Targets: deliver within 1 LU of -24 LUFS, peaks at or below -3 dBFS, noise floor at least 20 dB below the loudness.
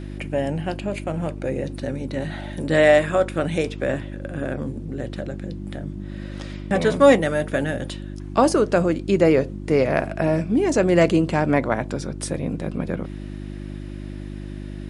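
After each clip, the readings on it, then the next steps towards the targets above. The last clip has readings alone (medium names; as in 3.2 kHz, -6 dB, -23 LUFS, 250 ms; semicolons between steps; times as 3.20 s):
hum 50 Hz; highest harmonic 350 Hz; hum level -31 dBFS; loudness -22.0 LUFS; peak level -3.0 dBFS; loudness target -24.0 LUFS
-> de-hum 50 Hz, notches 7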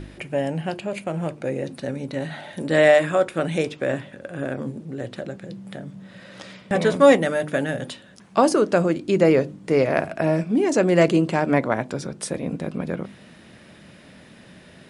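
hum not found; loudness -22.0 LUFS; peak level -3.5 dBFS; loudness target -24.0 LUFS
-> trim -2 dB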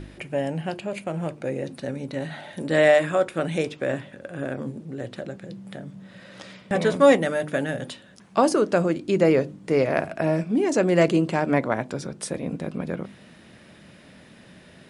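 loudness -24.0 LUFS; peak level -5.5 dBFS; noise floor -50 dBFS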